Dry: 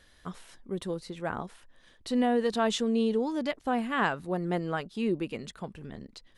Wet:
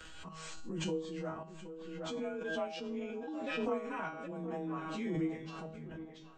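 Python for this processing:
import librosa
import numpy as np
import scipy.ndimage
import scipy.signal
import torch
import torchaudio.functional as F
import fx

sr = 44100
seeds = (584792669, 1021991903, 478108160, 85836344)

p1 = fx.partial_stretch(x, sr, pct=92)
p2 = fx.transient(p1, sr, attack_db=5, sustain_db=-11, at=(2.33, 4.31))
p3 = fx.comb_fb(p2, sr, f0_hz=160.0, decay_s=0.42, harmonics='all', damping=0.0, mix_pct=90)
p4 = fx.tremolo_random(p3, sr, seeds[0], hz=3.5, depth_pct=55)
p5 = p4 + fx.echo_tape(p4, sr, ms=769, feedback_pct=45, wet_db=-9.5, lp_hz=1800.0, drive_db=35.0, wow_cents=21, dry=0)
p6 = fx.pre_swell(p5, sr, db_per_s=26.0)
y = p6 * librosa.db_to_amplitude(6.0)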